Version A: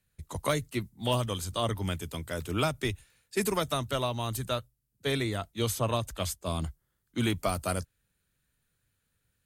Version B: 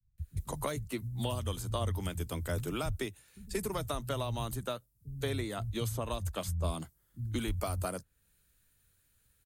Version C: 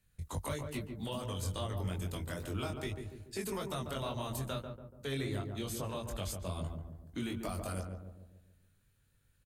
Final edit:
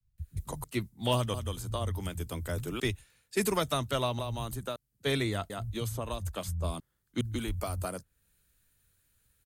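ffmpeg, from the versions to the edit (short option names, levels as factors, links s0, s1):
-filter_complex "[0:a]asplit=4[s0][s1][s2][s3];[1:a]asplit=5[s4][s5][s6][s7][s8];[s4]atrim=end=0.642[s9];[s0]atrim=start=0.638:end=1.342[s10];[s5]atrim=start=1.338:end=2.802[s11];[s1]atrim=start=2.798:end=4.192[s12];[s6]atrim=start=4.188:end=4.762[s13];[s2]atrim=start=4.758:end=5.502[s14];[s7]atrim=start=5.498:end=6.802[s15];[s3]atrim=start=6.798:end=7.212[s16];[s8]atrim=start=7.208[s17];[s9][s10]acrossfade=d=0.004:c1=hsin:c2=hsin[s18];[s18][s11]acrossfade=d=0.004:c1=hsin:c2=hsin[s19];[s19][s12]acrossfade=d=0.004:c1=hsin:c2=hsin[s20];[s20][s13]acrossfade=d=0.004:c1=hsin:c2=hsin[s21];[s21][s14]acrossfade=d=0.004:c1=hsin:c2=hsin[s22];[s22][s15]acrossfade=d=0.004:c1=hsin:c2=hsin[s23];[s23][s16]acrossfade=d=0.004:c1=hsin:c2=hsin[s24];[s24][s17]acrossfade=d=0.004:c1=hsin:c2=hsin"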